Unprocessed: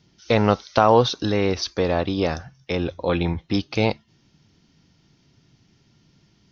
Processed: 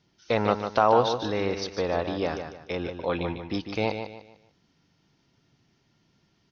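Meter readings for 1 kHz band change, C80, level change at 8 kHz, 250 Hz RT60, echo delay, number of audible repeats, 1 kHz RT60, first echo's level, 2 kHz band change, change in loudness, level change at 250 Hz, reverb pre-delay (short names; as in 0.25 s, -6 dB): -3.0 dB, none, n/a, none, 0.149 s, 3, none, -8.0 dB, -4.5 dB, -5.0 dB, -7.5 dB, none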